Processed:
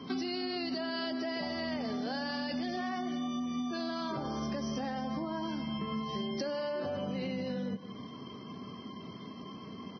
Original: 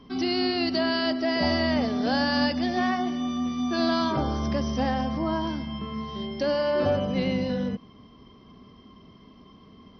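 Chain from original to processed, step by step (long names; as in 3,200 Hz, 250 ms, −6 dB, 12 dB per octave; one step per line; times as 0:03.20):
single-tap delay 169 ms −20 dB
brickwall limiter −22.5 dBFS, peak gain reduction 9.5 dB
high-pass filter 110 Hz 24 dB per octave
downward compressor 20 to 1, threshold −38 dBFS, peak gain reduction 13.5 dB
level +6 dB
Ogg Vorbis 16 kbit/s 16,000 Hz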